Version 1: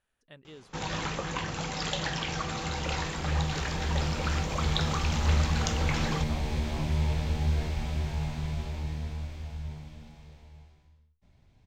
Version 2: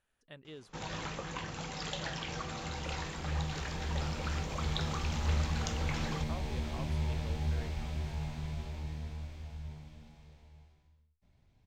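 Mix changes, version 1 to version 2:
first sound -7.0 dB; second sound -6.0 dB

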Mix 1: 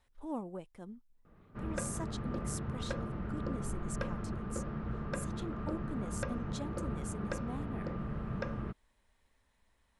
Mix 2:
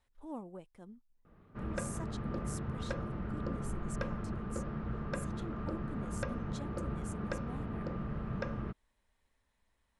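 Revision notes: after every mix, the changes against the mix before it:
speech -4.5 dB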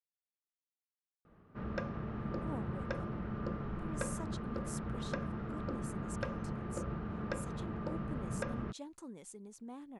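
speech: entry +2.20 s; master: add low shelf 62 Hz -7 dB

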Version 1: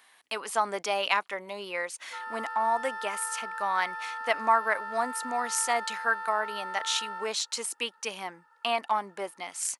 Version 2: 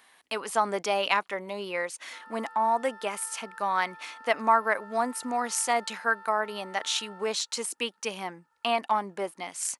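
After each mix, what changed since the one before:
background -11.5 dB; master: add low shelf 400 Hz +8.5 dB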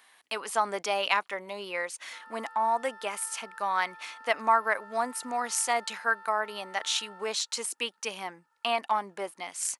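master: add low shelf 400 Hz -8.5 dB

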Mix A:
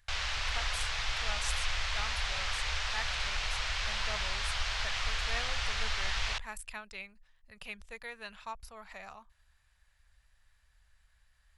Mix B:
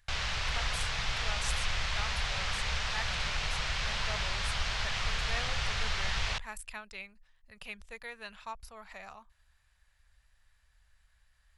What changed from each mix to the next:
background: add bell 190 Hz +15 dB 1.7 oct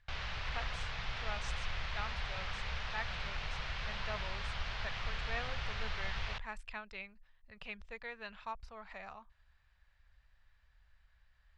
background -5.5 dB; master: add air absorption 170 m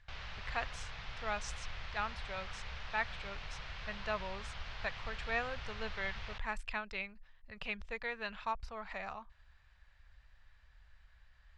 speech +5.5 dB; background -5.5 dB

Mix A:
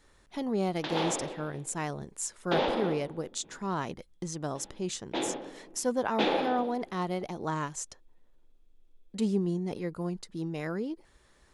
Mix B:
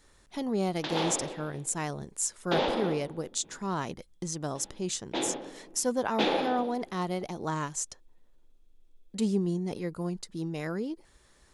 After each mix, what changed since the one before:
master: add tone controls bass +1 dB, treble +5 dB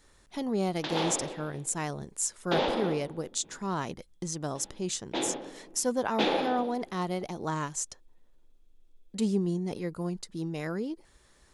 none

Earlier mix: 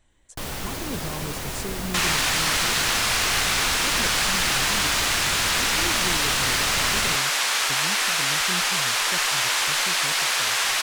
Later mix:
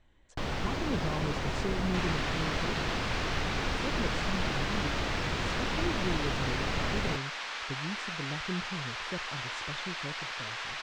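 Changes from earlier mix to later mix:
second sound -11.5 dB; master: add air absorption 170 m

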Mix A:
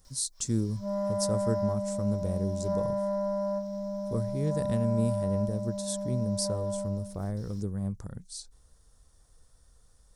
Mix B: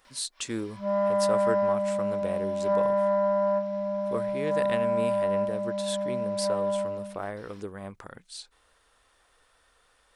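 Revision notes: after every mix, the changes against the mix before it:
speech: add tone controls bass -14 dB, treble +6 dB; master: remove EQ curve 190 Hz 0 dB, 280 Hz -5 dB, 490 Hz -5 dB, 2700 Hz -16 dB, 5700 Hz +9 dB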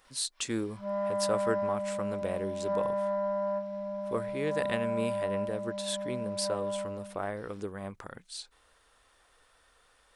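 background -6.5 dB

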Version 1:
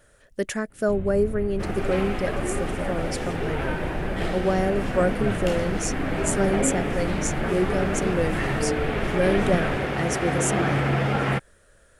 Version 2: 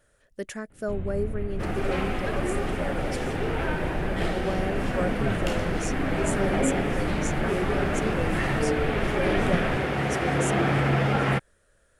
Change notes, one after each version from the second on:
speech -7.5 dB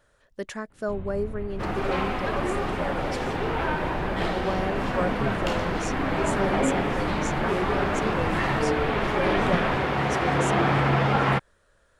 first sound -4.0 dB; master: add fifteen-band EQ 1000 Hz +8 dB, 4000 Hz +4 dB, 10000 Hz -7 dB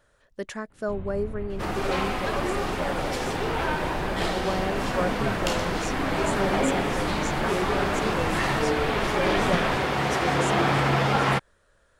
second sound: add tone controls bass -2 dB, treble +11 dB

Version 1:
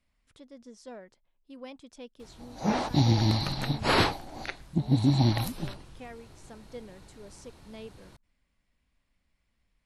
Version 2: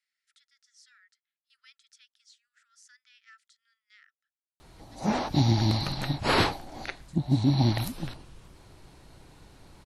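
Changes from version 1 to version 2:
speech: add rippled Chebyshev high-pass 1300 Hz, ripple 6 dB; background: entry +2.40 s

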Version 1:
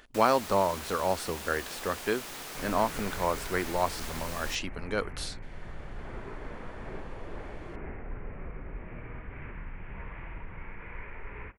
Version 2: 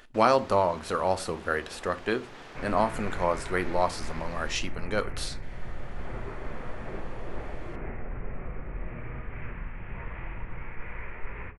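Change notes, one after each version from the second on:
first sound: add tape spacing loss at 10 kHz 26 dB; reverb: on, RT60 0.35 s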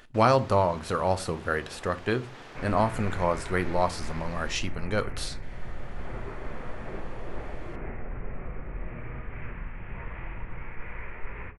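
speech: add bell 120 Hz +14 dB 0.71 oct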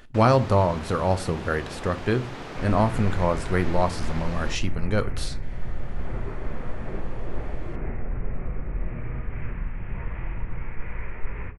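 first sound +7.5 dB; master: add low shelf 340 Hz +7.5 dB

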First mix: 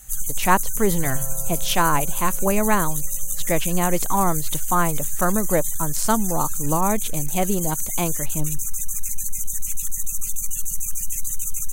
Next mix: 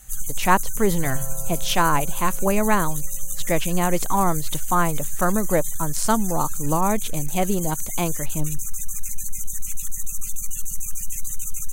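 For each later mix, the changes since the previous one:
first sound: add high shelf 5100 Hz -4.5 dB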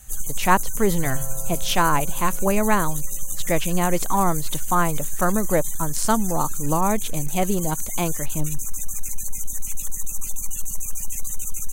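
first sound: remove Chebyshev band-stop 210–1200 Hz, order 5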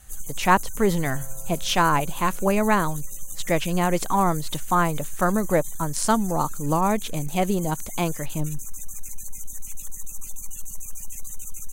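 first sound -7.0 dB; second sound -8.0 dB

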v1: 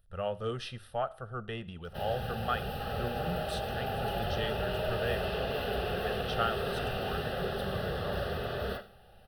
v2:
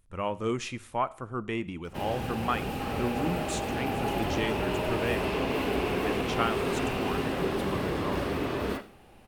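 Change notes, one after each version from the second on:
master: remove fixed phaser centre 1500 Hz, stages 8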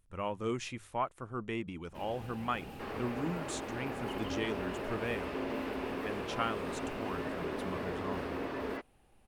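speech -3.5 dB; first sound -9.5 dB; reverb: off

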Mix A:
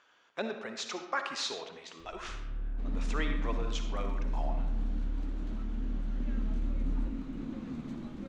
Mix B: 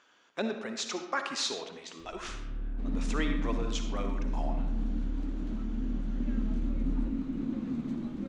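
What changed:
speech: add high shelf 6500 Hz +10 dB; master: add bell 250 Hz +6.5 dB 1.3 oct

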